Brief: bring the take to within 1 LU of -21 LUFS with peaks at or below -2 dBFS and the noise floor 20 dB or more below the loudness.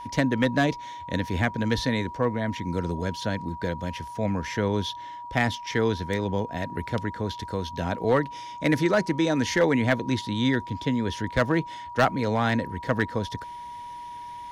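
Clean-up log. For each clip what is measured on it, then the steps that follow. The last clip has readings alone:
clipped 0.2%; flat tops at -13.5 dBFS; steady tone 960 Hz; tone level -36 dBFS; loudness -26.5 LUFS; peak -13.5 dBFS; loudness target -21.0 LUFS
-> clip repair -13.5 dBFS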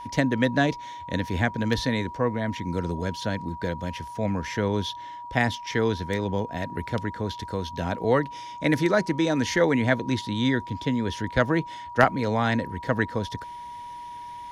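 clipped 0.0%; steady tone 960 Hz; tone level -36 dBFS
-> notch 960 Hz, Q 30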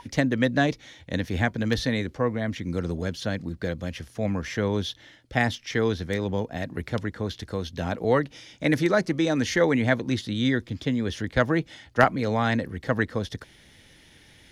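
steady tone none; loudness -26.5 LUFS; peak -4.5 dBFS; loudness target -21.0 LUFS
-> gain +5.5 dB; limiter -2 dBFS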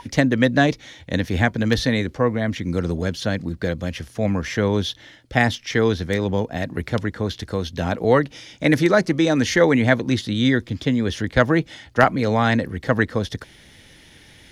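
loudness -21.0 LUFS; peak -2.0 dBFS; noise floor -49 dBFS

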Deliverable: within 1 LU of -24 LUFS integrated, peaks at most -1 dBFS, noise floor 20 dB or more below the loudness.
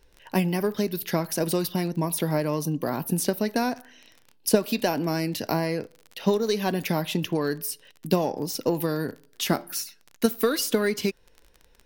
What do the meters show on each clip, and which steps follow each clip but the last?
ticks 20/s; loudness -26.5 LUFS; peak -4.5 dBFS; loudness target -24.0 LUFS
-> de-click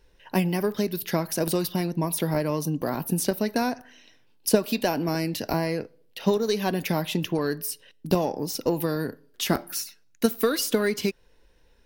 ticks 0.76/s; loudness -26.5 LUFS; peak -4.5 dBFS; loudness target -24.0 LUFS
-> gain +2.5 dB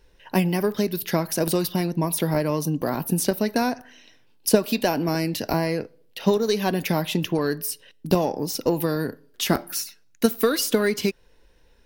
loudness -24.0 LUFS; peak -2.0 dBFS; noise floor -57 dBFS

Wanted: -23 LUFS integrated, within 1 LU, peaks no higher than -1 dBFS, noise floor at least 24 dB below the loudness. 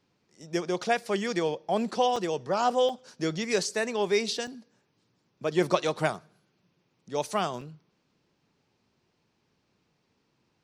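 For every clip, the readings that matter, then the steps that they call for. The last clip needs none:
dropouts 4; longest dropout 3.7 ms; loudness -28.5 LUFS; peak -9.0 dBFS; loudness target -23.0 LUFS
-> interpolate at 2.16/2.89/4.47/7.61, 3.7 ms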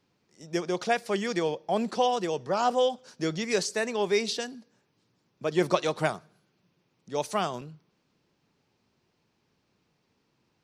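dropouts 0; loudness -28.5 LUFS; peak -9.0 dBFS; loudness target -23.0 LUFS
-> gain +5.5 dB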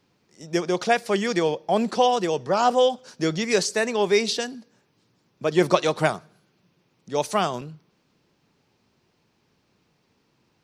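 loudness -23.0 LUFS; peak -3.5 dBFS; noise floor -68 dBFS

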